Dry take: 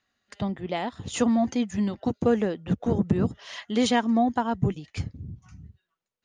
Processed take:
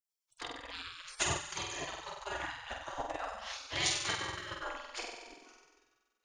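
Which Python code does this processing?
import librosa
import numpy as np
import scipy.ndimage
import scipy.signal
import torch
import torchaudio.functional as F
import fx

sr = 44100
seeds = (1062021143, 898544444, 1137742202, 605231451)

y = fx.low_shelf(x, sr, hz=400.0, db=4.5)
y = fx.room_flutter(y, sr, wall_m=8.1, rt60_s=1.4)
y = fx.spec_gate(y, sr, threshold_db=-25, keep='weak')
y = fx.transient(y, sr, attack_db=5, sustain_db=-6)
y = F.gain(torch.from_numpy(y), -2.0).numpy()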